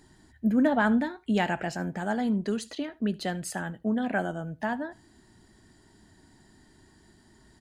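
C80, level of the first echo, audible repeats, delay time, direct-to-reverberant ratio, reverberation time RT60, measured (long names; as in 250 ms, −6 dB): no reverb audible, −23.0 dB, 1, 76 ms, no reverb audible, no reverb audible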